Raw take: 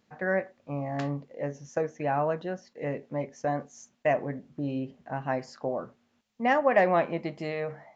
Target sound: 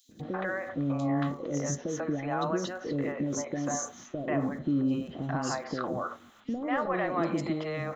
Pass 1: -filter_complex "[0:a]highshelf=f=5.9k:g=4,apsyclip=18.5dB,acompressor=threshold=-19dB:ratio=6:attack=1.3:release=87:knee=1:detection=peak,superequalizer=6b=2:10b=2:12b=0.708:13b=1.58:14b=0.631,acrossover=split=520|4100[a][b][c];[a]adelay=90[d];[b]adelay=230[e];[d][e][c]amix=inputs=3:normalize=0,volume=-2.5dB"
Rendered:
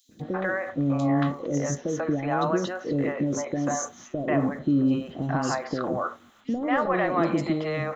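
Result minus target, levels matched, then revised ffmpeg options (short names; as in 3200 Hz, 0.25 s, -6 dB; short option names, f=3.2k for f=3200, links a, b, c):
compressor: peak gain reduction -5.5 dB
-filter_complex "[0:a]highshelf=f=5.9k:g=4,apsyclip=18.5dB,acompressor=threshold=-25.5dB:ratio=6:attack=1.3:release=87:knee=1:detection=peak,superequalizer=6b=2:10b=2:12b=0.708:13b=1.58:14b=0.631,acrossover=split=520|4100[a][b][c];[a]adelay=90[d];[b]adelay=230[e];[d][e][c]amix=inputs=3:normalize=0,volume=-2.5dB"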